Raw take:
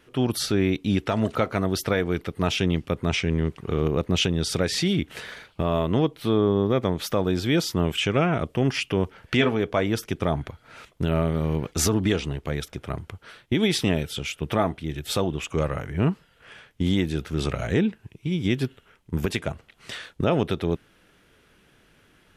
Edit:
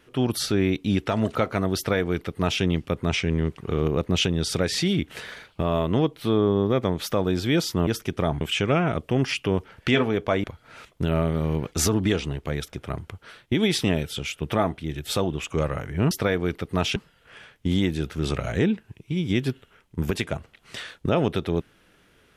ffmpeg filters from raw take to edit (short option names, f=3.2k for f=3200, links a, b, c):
-filter_complex "[0:a]asplit=6[a][b][c][d][e][f];[a]atrim=end=7.872[g];[b]atrim=start=9.898:end=10.442[h];[c]atrim=start=7.868:end=9.902[i];[d]atrim=start=10.438:end=16.112[j];[e]atrim=start=1.768:end=2.622[k];[f]atrim=start=16.108[l];[g][h]acrossfade=d=0.004:c1=hsin:c2=hsin[m];[m][i]acrossfade=d=0.004:c1=hsin:c2=hsin[n];[n][j]acrossfade=d=0.004:c1=hsin:c2=hsin[o];[o][k]acrossfade=d=0.004:c1=hsin:c2=hsin[p];[p][l]acrossfade=d=0.004:c1=hsin:c2=hsin"